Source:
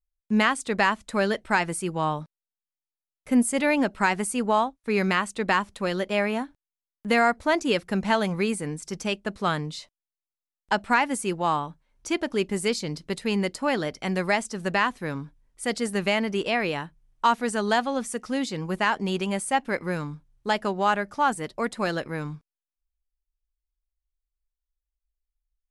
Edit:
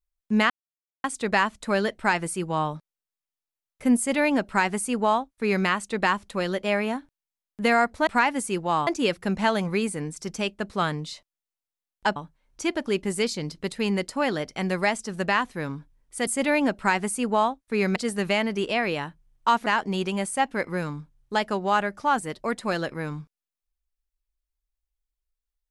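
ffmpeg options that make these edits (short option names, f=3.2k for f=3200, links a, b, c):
-filter_complex "[0:a]asplit=8[a][b][c][d][e][f][g][h];[a]atrim=end=0.5,asetpts=PTS-STARTPTS,afade=t=out:st=0.496:d=0.004:c=hsin,apad=pad_dur=0.54[i];[b]atrim=start=0.5:end=7.532,asetpts=PTS-STARTPTS,afade=t=in:d=0.004:c=hsin[j];[c]atrim=start=10.818:end=11.622[k];[d]atrim=start=7.528:end=10.822[l];[e]atrim=start=11.618:end=15.732[m];[f]atrim=start=3.428:end=5.122[n];[g]atrim=start=15.728:end=17.432[o];[h]atrim=start=18.798[p];[i][j]concat=n=2:v=0:a=1[q];[q][k]acrossfade=d=0.004:c1=hsin:c2=hsin[r];[r][l]acrossfade=d=0.004:c1=hsin:c2=hsin[s];[s][m]acrossfade=d=0.004:c1=hsin:c2=hsin[t];[t][n]acrossfade=d=0.004:c1=hsin:c2=hsin[u];[u][o]acrossfade=d=0.004:c1=hsin:c2=hsin[v];[v][p]acrossfade=d=0.004:c1=hsin:c2=hsin"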